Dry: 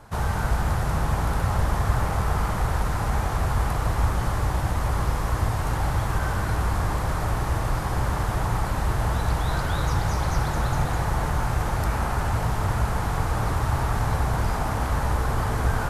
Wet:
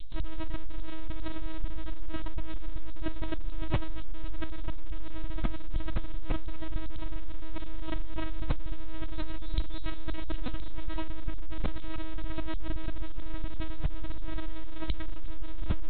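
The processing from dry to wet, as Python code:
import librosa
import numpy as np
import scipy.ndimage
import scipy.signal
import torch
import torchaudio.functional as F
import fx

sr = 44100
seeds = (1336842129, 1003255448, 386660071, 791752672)

p1 = scipy.signal.sosfilt(scipy.signal.cheby2(4, 70, [110.0, 1400.0], 'bandstop', fs=sr, output='sos'), x)
p2 = fx.schmitt(p1, sr, flips_db=-39.0)
p3 = p1 + F.gain(torch.from_numpy(p2), -7.0).numpy()
p4 = fx.lpc_vocoder(p3, sr, seeds[0], excitation='pitch_kept', order=8)
p5 = fx.env_flatten(p4, sr, amount_pct=70)
y = F.gain(torch.from_numpy(p5), 7.5).numpy()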